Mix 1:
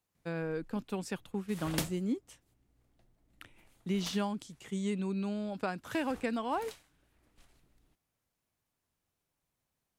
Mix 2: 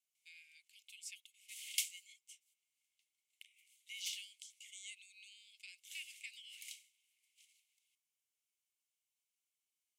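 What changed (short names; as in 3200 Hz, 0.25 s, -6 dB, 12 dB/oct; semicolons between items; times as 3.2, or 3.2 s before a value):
background +4.0 dB; master: add rippled Chebyshev high-pass 2100 Hz, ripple 6 dB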